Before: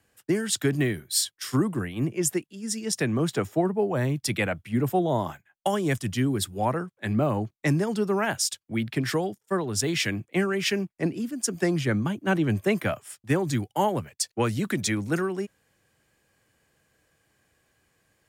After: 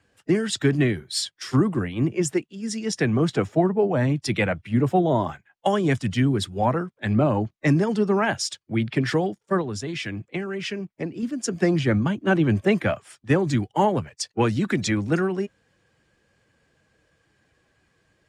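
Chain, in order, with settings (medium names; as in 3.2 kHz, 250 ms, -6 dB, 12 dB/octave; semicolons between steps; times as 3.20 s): coarse spectral quantiser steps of 15 dB; 9.61–11.23 s: compression, threshold -31 dBFS, peak gain reduction 10.5 dB; distance through air 83 m; trim +4.5 dB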